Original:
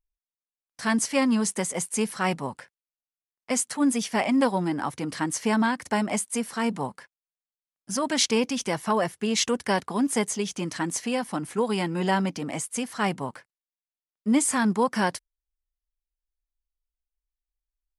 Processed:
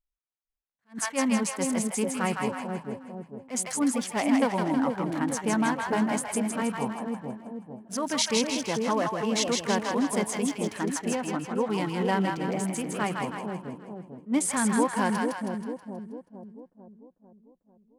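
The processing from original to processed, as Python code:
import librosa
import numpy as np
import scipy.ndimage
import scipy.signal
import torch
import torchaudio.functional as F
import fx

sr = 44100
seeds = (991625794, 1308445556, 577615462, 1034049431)

y = fx.wiener(x, sr, points=9)
y = fx.bessel_lowpass(y, sr, hz=6100.0, order=2, at=(11.15, 11.69))
y = fx.echo_split(y, sr, split_hz=650.0, low_ms=446, high_ms=160, feedback_pct=52, wet_db=-3.0)
y = fx.attack_slew(y, sr, db_per_s=320.0)
y = y * librosa.db_to_amplitude(-3.0)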